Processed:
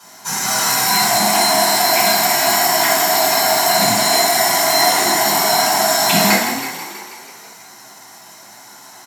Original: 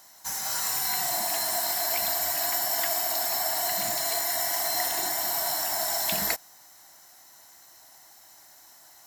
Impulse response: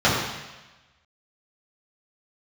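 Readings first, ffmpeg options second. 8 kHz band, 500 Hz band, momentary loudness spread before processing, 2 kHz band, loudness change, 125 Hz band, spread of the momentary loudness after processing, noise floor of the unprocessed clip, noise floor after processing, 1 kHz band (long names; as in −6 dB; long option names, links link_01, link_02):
+11.5 dB, +16.5 dB, 2 LU, +16.5 dB, +12.0 dB, +20.0 dB, 8 LU, −53 dBFS, −41 dBFS, +17.0 dB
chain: -filter_complex "[0:a]asplit=9[link_01][link_02][link_03][link_04][link_05][link_06][link_07][link_08][link_09];[link_02]adelay=162,afreqshift=35,volume=-8.5dB[link_10];[link_03]adelay=324,afreqshift=70,volume=-12.5dB[link_11];[link_04]adelay=486,afreqshift=105,volume=-16.5dB[link_12];[link_05]adelay=648,afreqshift=140,volume=-20.5dB[link_13];[link_06]adelay=810,afreqshift=175,volume=-24.6dB[link_14];[link_07]adelay=972,afreqshift=210,volume=-28.6dB[link_15];[link_08]adelay=1134,afreqshift=245,volume=-32.6dB[link_16];[link_09]adelay=1296,afreqshift=280,volume=-36.6dB[link_17];[link_01][link_10][link_11][link_12][link_13][link_14][link_15][link_16][link_17]amix=inputs=9:normalize=0[link_18];[1:a]atrim=start_sample=2205,asetrate=79380,aresample=44100[link_19];[link_18][link_19]afir=irnorm=-1:irlink=0,volume=-1.5dB"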